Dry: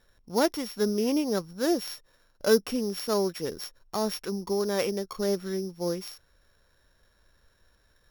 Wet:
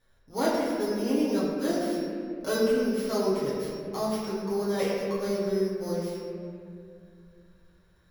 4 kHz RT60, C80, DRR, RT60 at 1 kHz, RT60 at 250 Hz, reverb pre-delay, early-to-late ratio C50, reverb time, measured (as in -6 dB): 1.3 s, 0.5 dB, -9.0 dB, 2.0 s, 3.0 s, 6 ms, -1.5 dB, 2.3 s